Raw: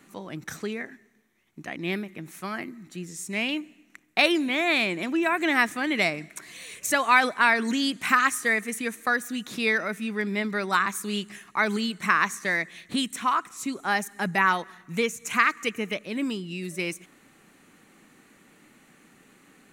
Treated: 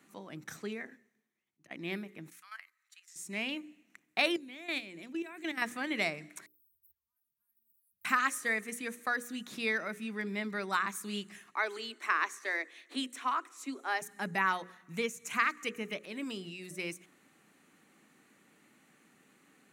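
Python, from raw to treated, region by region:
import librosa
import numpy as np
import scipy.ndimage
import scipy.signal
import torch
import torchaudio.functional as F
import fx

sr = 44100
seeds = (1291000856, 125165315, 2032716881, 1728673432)

y = fx.chain(x, sr, fx.auto_swell(attack_ms=124.0),
    fx.band_widen(depth_pct=40), at=(0.6, 1.71))
y = fx.chain(y, sr, fx.highpass(hz=1200.0, slope=24),
    fx.level_steps(step_db=12), at=(2.3, 3.16))
y = fx.chain(y, sr, fx.highpass(hz=130.0, slope=12),
    fx.peak_eq(hz=1000.0, db=-8.5, octaves=1.9),
    fx.level_steps(step_db=13), at=(4.36, 5.62))
y = fx.chain(y, sr, fx.cheby2_bandstop(low_hz=250.0, high_hz=6500.0, order=4, stop_db=70),
    fx.peak_eq(hz=3400.0, db=-8.0, octaves=2.4),
    fx.band_squash(depth_pct=100), at=(6.46, 8.05))
y = fx.chain(y, sr, fx.steep_highpass(hz=250.0, slope=96),
    fx.high_shelf(hz=7800.0, db=-6.5), at=(11.5, 14.02))
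y = fx.chain(y, sr, fx.low_shelf(hz=190.0, db=-9.5),
    fx.transient(attack_db=1, sustain_db=9), at=(16.03, 16.71))
y = scipy.signal.sosfilt(scipy.signal.butter(2, 110.0, 'highpass', fs=sr, output='sos'), y)
y = fx.hum_notches(y, sr, base_hz=60, count=9)
y = F.gain(torch.from_numpy(y), -8.0).numpy()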